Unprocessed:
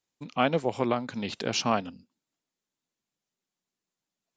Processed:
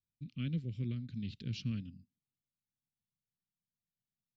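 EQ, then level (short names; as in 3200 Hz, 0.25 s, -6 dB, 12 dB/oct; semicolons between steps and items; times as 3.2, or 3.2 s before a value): Chebyshev band-stop 120–5400 Hz, order 2; air absorption 450 m; +3.5 dB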